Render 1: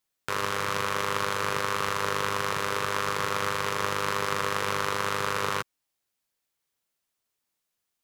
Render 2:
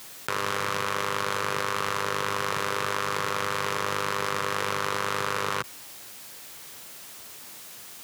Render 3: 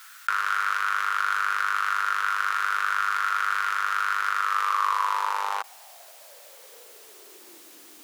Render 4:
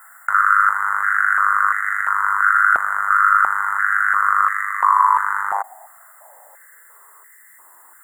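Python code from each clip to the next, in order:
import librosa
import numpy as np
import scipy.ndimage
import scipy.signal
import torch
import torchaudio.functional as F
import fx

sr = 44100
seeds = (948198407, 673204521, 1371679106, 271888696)

y1 = scipy.signal.sosfilt(scipy.signal.butter(2, 80.0, 'highpass', fs=sr, output='sos'), x)
y1 = fx.env_flatten(y1, sr, amount_pct=100)
y1 = y1 * librosa.db_to_amplitude(-2.0)
y2 = fx.filter_sweep_highpass(y1, sr, from_hz=1400.0, to_hz=310.0, start_s=4.34, end_s=7.76, q=6.8)
y2 = y2 * librosa.db_to_amplitude(-5.5)
y3 = fx.brickwall_bandstop(y2, sr, low_hz=2100.0, high_hz=7000.0)
y3 = fx.filter_held_highpass(y3, sr, hz=2.9, low_hz=720.0, high_hz=1900.0)
y3 = y3 * librosa.db_to_amplitude(1.5)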